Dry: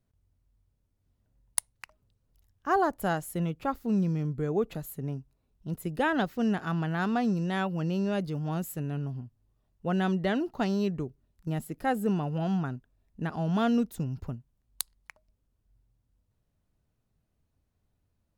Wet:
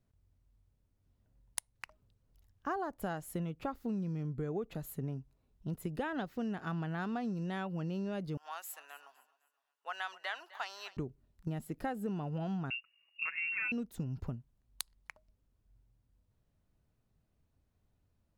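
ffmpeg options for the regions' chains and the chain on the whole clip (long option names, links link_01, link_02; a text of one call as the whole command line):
ffmpeg -i in.wav -filter_complex "[0:a]asettb=1/sr,asplit=3[link_01][link_02][link_03];[link_01]atrim=end=8.374[link_04];[link_02]atrim=start=8.37:end=10.97,asetpts=PTS-STARTPTS,afade=type=in:duration=0.004:curve=qsin,afade=type=out:start_time=2.596:duration=0.004:curve=qsin,highpass=frequency=900:width=0.5412,highpass=frequency=900:width=1.3066,aecho=1:1:256|512|768:0.112|0.0404|0.0145,atrim=end_sample=114660[link_05];[link_03]atrim=start=10.966[link_06];[link_04][link_05]acrossfade=duration=0.004:curve1=hsin:curve2=qsin[link_07];[link_07][link_06]acrossfade=duration=0.004:curve1=qsin:curve2=hsin,asettb=1/sr,asplit=3[link_08][link_09][link_10];[link_08]atrim=end=12.704[link_11];[link_09]atrim=start=12.7:end=13.72,asetpts=PTS-STARTPTS,afade=type=in:duration=0.004:curve=qsin,afade=type=out:start_time=1.016:duration=0.004:curve=qsin,lowpass=frequency=2500:width_type=q:width=0.5098,lowpass=frequency=2500:width_type=q:width=0.6013,lowpass=frequency=2500:width_type=q:width=0.9,lowpass=frequency=2500:width_type=q:width=2.563,afreqshift=-2900,aecho=1:1:6.1:0.79,atrim=end_sample=44982[link_12];[link_10]atrim=start=13.716[link_13];[link_11][link_12]acrossfade=duration=0.004:curve1=hsin:curve2=qsin[link_14];[link_14][link_13]acrossfade=duration=0.004:curve1=qsin:curve2=hsin,highshelf=frequency=5400:gain=-5,acompressor=threshold=-34dB:ratio=6" out.wav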